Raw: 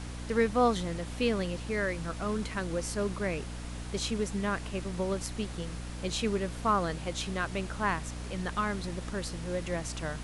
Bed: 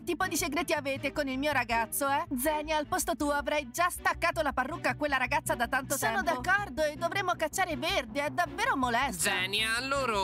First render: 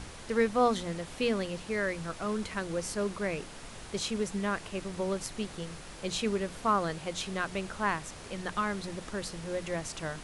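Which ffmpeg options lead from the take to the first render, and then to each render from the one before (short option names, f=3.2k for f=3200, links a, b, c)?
-af "bandreject=f=60:t=h:w=6,bandreject=f=120:t=h:w=6,bandreject=f=180:t=h:w=6,bandreject=f=240:t=h:w=6,bandreject=f=300:t=h:w=6"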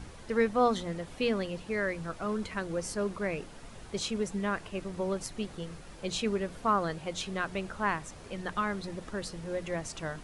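-af "afftdn=nr=7:nf=-46"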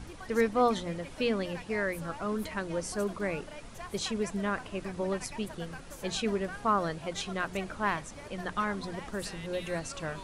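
-filter_complex "[1:a]volume=-17.5dB[a];[0:a][a]amix=inputs=2:normalize=0"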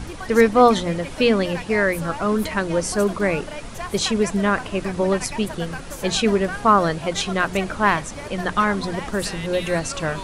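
-af "volume=12dB"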